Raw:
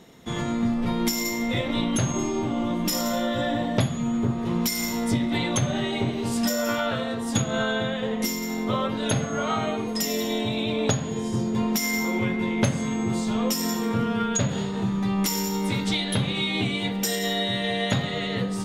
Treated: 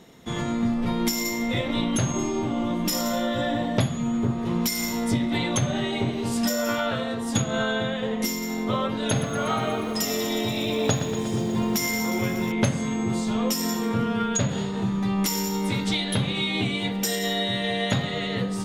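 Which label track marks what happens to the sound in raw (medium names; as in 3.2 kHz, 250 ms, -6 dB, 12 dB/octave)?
9.030000	12.520000	bit-crushed delay 120 ms, feedback 80%, word length 8-bit, level -10.5 dB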